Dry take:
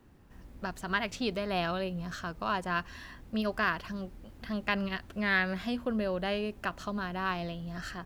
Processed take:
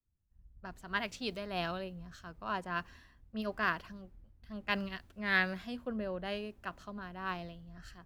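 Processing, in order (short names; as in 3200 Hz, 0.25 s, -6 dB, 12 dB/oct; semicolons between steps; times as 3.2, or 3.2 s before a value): three-band expander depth 100%; gain -6 dB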